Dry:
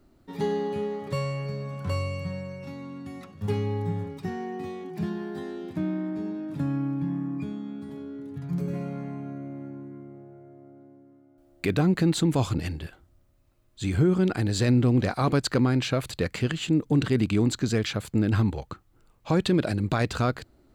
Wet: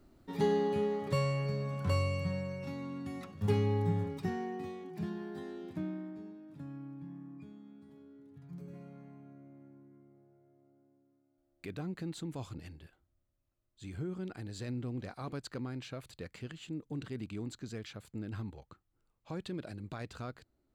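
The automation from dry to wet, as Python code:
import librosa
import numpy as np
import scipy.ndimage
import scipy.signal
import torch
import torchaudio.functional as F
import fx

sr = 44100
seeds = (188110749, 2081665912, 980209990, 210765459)

y = fx.gain(x, sr, db=fx.line((4.19, -2.0), (4.81, -8.0), (5.75, -8.0), (6.4, -17.5)))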